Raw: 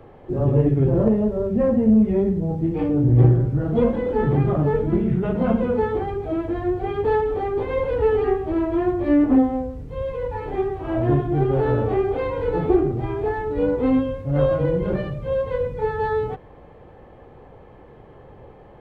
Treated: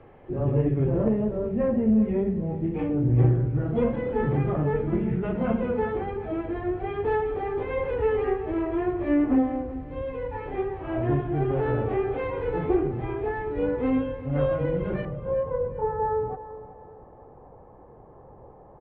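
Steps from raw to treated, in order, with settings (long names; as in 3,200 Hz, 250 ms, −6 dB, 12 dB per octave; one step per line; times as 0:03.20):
low-pass with resonance 2,500 Hz, resonance Q 1.6, from 0:15.05 970 Hz
repeating echo 380 ms, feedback 37%, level −15 dB
level −5.5 dB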